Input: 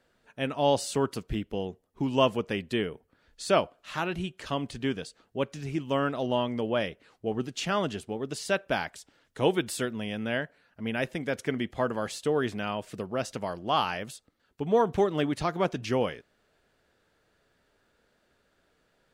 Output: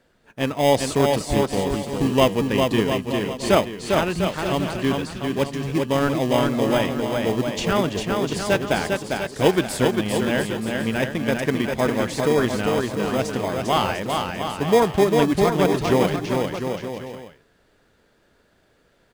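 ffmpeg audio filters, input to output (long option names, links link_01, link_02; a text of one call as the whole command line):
ffmpeg -i in.wav -filter_complex "[0:a]asplit=2[link_01][link_02];[link_02]acrusher=samples=31:mix=1:aa=0.000001,volume=-6.5dB[link_03];[link_01][link_03]amix=inputs=2:normalize=0,aecho=1:1:400|700|925|1094|1220:0.631|0.398|0.251|0.158|0.1,volume=4.5dB" out.wav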